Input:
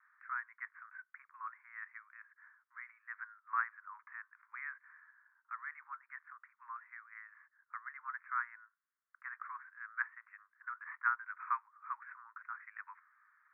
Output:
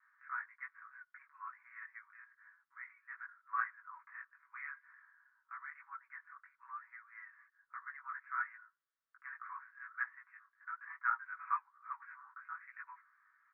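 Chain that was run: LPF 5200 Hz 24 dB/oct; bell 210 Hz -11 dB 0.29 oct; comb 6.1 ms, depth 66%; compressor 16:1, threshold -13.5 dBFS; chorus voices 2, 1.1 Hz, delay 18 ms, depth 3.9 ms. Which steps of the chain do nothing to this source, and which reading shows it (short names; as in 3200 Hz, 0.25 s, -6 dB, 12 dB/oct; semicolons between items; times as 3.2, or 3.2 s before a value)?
LPF 5200 Hz: input band ends at 2400 Hz; bell 210 Hz: input band starts at 810 Hz; compressor, threshold -13.5 dBFS: input peak -20.0 dBFS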